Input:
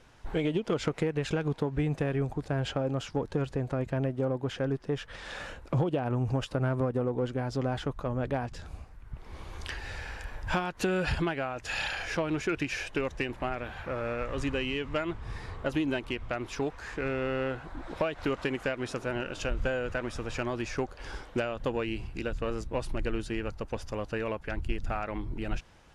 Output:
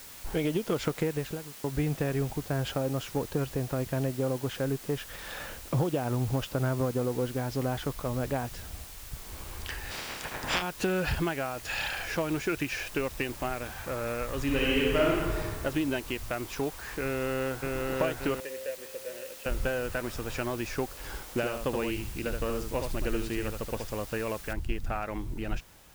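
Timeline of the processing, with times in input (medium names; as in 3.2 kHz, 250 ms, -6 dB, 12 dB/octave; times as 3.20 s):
1.03–1.64 s: studio fade out
5.30–7.92 s: steep low-pass 7.4 kHz 96 dB/octave
8.64–9.20 s: low-pass 4.2 kHz
9.90–10.61 s: spectral peaks clipped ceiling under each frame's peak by 27 dB
14.44–15.38 s: reverb throw, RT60 1.6 s, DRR -5 dB
17.04–17.62 s: echo throw 580 ms, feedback 50%, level -1.5 dB
18.40–19.46 s: vowel filter e
21.22–23.87 s: delay 74 ms -5.5 dB
24.53 s: noise floor step -47 dB -59 dB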